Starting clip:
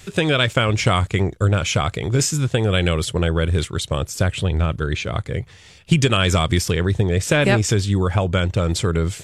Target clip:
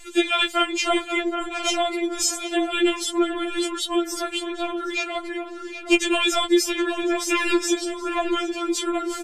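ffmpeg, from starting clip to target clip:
-filter_complex "[0:a]asplit=2[s0][s1];[s1]adelay=771,lowpass=f=1300:p=1,volume=0.596,asplit=2[s2][s3];[s3]adelay=771,lowpass=f=1300:p=1,volume=0.37,asplit=2[s4][s5];[s5]adelay=771,lowpass=f=1300:p=1,volume=0.37,asplit=2[s6][s7];[s7]adelay=771,lowpass=f=1300:p=1,volume=0.37,asplit=2[s8][s9];[s9]adelay=771,lowpass=f=1300:p=1,volume=0.37[s10];[s0][s2][s4][s6][s8][s10]amix=inputs=6:normalize=0,afftfilt=real='re*4*eq(mod(b,16),0)':imag='im*4*eq(mod(b,16),0)':win_size=2048:overlap=0.75,volume=1.19"

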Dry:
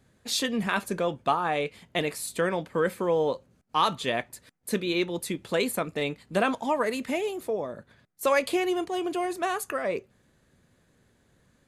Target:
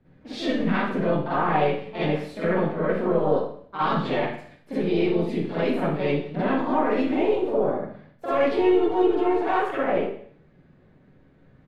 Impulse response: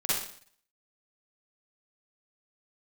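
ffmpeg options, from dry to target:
-filter_complex "[0:a]aemphasis=mode=reproduction:type=riaa,asplit=3[s0][s1][s2];[s1]asetrate=37084,aresample=44100,atempo=1.18921,volume=0.158[s3];[s2]asetrate=55563,aresample=44100,atempo=0.793701,volume=0.501[s4];[s0][s3][s4]amix=inputs=3:normalize=0,alimiter=limit=0.126:level=0:latency=1:release=19,acrossover=split=170 4200:gain=0.251 1 0.141[s5][s6][s7];[s5][s6][s7]amix=inputs=3:normalize=0,aeval=exprs='(tanh(2.51*val(0)+0.75)-tanh(0.75))/2.51':c=same[s8];[1:a]atrim=start_sample=2205[s9];[s8][s9]afir=irnorm=-1:irlink=0"

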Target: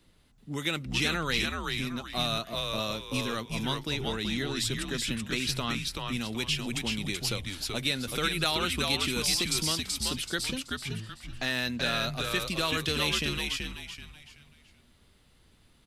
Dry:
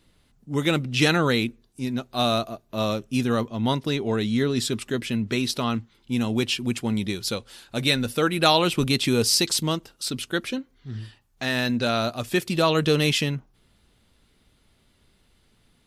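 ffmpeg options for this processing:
-filter_complex "[0:a]acrossover=split=110|1400[s0][s1][s2];[s0]acompressor=threshold=0.00316:ratio=4[s3];[s1]acompressor=threshold=0.0224:ratio=4[s4];[s2]acompressor=threshold=0.0562:ratio=4[s5];[s3][s4][s5]amix=inputs=3:normalize=0,asplit=5[s6][s7][s8][s9][s10];[s7]adelay=380,afreqshift=-96,volume=0.708[s11];[s8]adelay=760,afreqshift=-192,volume=0.226[s12];[s9]adelay=1140,afreqshift=-288,volume=0.0724[s13];[s10]adelay=1520,afreqshift=-384,volume=0.0232[s14];[s6][s11][s12][s13][s14]amix=inputs=5:normalize=0,volume=0.841"

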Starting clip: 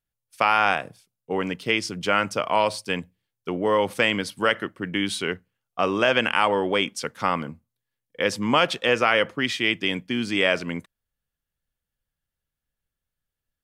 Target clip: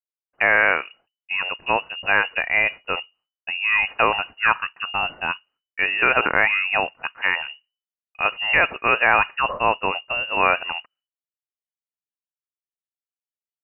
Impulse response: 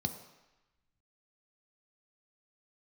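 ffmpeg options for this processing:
-af "agate=range=0.0224:threshold=0.00251:ratio=3:detection=peak,adynamicequalizer=threshold=0.02:dfrequency=2000:dqfactor=1.2:tfrequency=2000:tqfactor=1.2:attack=5:release=100:ratio=0.375:range=3.5:mode=boostabove:tftype=bell,lowpass=f=2600:t=q:w=0.5098,lowpass=f=2600:t=q:w=0.6013,lowpass=f=2600:t=q:w=0.9,lowpass=f=2600:t=q:w=2.563,afreqshift=-3000"

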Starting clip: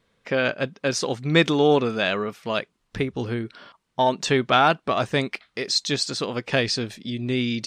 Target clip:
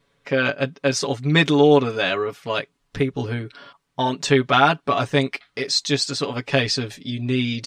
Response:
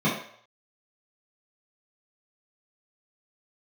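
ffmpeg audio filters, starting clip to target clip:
-af "aecho=1:1:7.1:0.78"

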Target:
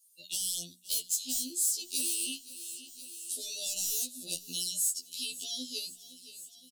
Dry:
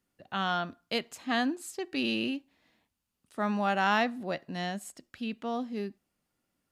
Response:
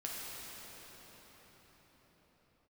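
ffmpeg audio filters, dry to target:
-filter_complex "[0:a]highshelf=f=2400:g=10,acrossover=split=710|1400[s0][s1][s2];[s2]aeval=exprs='0.119*sin(PI/2*3.55*val(0)/0.119)':c=same[s3];[s0][s1][s3]amix=inputs=3:normalize=0,acrossover=split=460|3000[s4][s5][s6];[s5]acompressor=threshold=0.0316:ratio=6[s7];[s4][s7][s6]amix=inputs=3:normalize=0,asuperstop=centerf=1300:order=8:qfactor=0.52,bass=f=250:g=-3,treble=f=4000:g=14,afftdn=nr=19:nf=-46,bandreject=f=60:t=h:w=6,bandreject=f=120:t=h:w=6,bandreject=f=180:t=h:w=6,bandreject=f=240:t=h:w=6,asplit=2[s8][s9];[s9]aecho=0:1:519|1038|1557|2076:0.0631|0.0366|0.0212|0.0123[s10];[s8][s10]amix=inputs=2:normalize=0,acompressor=threshold=0.0126:ratio=2,afftfilt=real='re*2*eq(mod(b,4),0)':imag='im*2*eq(mod(b,4),0)':win_size=2048:overlap=0.75"

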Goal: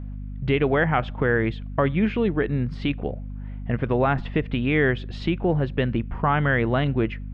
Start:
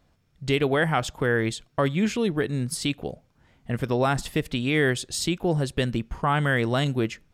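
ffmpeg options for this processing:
-filter_complex "[0:a]lowpass=f=2700:w=0.5412,lowpass=f=2700:w=1.3066,asplit=2[s0][s1];[s1]acompressor=threshold=0.0178:ratio=6,volume=1.19[s2];[s0][s2]amix=inputs=2:normalize=0,aeval=exprs='val(0)+0.0251*(sin(2*PI*50*n/s)+sin(2*PI*2*50*n/s)/2+sin(2*PI*3*50*n/s)/3+sin(2*PI*4*50*n/s)/4+sin(2*PI*5*50*n/s)/5)':c=same"

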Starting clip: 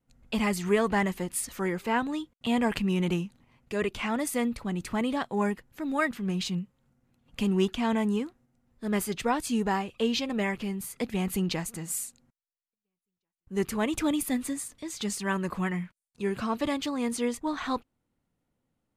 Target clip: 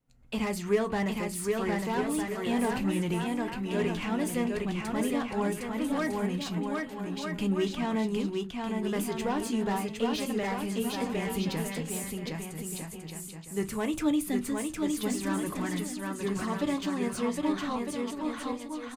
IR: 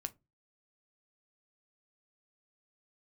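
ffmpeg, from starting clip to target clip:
-filter_complex "[0:a]aecho=1:1:760|1254|1575|1784|1919:0.631|0.398|0.251|0.158|0.1[s0];[1:a]atrim=start_sample=2205[s1];[s0][s1]afir=irnorm=-1:irlink=0,acrossover=split=690[s2][s3];[s3]asoftclip=type=tanh:threshold=0.0251[s4];[s2][s4]amix=inputs=2:normalize=0"

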